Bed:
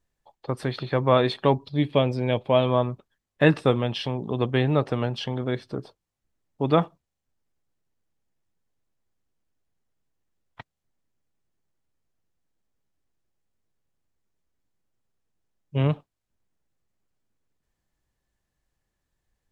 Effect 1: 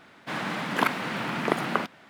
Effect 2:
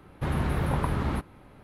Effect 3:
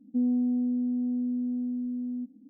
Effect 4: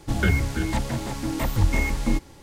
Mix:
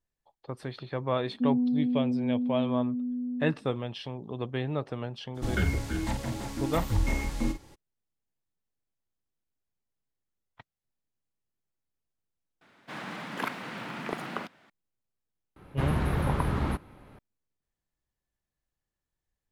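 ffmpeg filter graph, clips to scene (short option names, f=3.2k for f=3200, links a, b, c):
-filter_complex "[0:a]volume=-9.5dB[a];[3:a]equalizer=f=210:t=o:w=0.77:g=4.5[b];[4:a]asplit=2[c][d];[d]adelay=47,volume=-8.5dB[e];[c][e]amix=inputs=2:normalize=0[f];[1:a]acontrast=67[g];[a]asplit=2[h][i];[h]atrim=end=12.614[j];[g]atrim=end=2.09,asetpts=PTS-STARTPTS,volume=-14.5dB[k];[i]atrim=start=14.696[l];[b]atrim=end=2.49,asetpts=PTS-STARTPTS,volume=-3.5dB,afade=t=in:d=0.004:c=hsin,afade=t=out:st=2.486:d=0.004:c=hsin,adelay=1260[m];[f]atrim=end=2.42,asetpts=PTS-STARTPTS,volume=-6.5dB,afade=t=in:d=0.02,afade=t=out:st=2.4:d=0.02,adelay=5340[n];[2:a]atrim=end=1.63,asetpts=PTS-STARTPTS,volume=-0.5dB,afade=t=in:d=0.004:c=hsin,afade=t=out:st=1.626:d=0.004:c=hsin,adelay=686196S[o];[j][k]acrossfade=d=0.004:c1=hsin:c2=hsin[p];[p][l]acrossfade=d=0.004:c1=hsin:c2=hsin[q];[q][m][n][o]amix=inputs=4:normalize=0"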